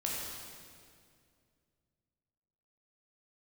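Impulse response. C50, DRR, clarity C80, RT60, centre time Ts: -1.5 dB, -4.0 dB, 0.5 dB, 2.2 s, 0.119 s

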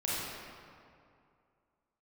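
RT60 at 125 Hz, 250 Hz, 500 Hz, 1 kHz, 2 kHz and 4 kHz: 2.6, 2.4, 2.4, 2.4, 1.9, 1.4 s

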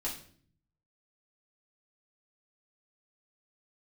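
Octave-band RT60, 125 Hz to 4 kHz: 1.0, 0.85, 0.60, 0.45, 0.45, 0.45 s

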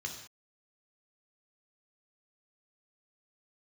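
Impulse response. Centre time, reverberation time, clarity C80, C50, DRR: 25 ms, not exponential, 9.0 dB, 6.5 dB, 1.5 dB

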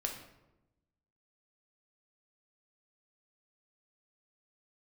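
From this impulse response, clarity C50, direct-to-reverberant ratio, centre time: 6.5 dB, 1.5 dB, 26 ms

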